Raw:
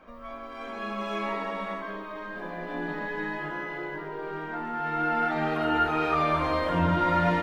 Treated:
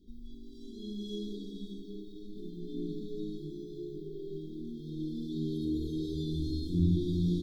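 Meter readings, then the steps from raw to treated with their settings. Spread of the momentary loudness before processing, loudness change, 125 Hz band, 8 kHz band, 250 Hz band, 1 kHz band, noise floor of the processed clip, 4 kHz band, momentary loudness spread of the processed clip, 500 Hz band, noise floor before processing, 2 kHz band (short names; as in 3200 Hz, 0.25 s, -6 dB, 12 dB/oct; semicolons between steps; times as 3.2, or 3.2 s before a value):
13 LU, -7.5 dB, -0.5 dB, n/a, -2.0 dB, under -40 dB, -47 dBFS, -6.5 dB, 16 LU, -10.0 dB, -40 dBFS, under -40 dB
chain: brick-wall FIR band-stop 440–3200 Hz; low shelf 85 Hz +9 dB; gain -3 dB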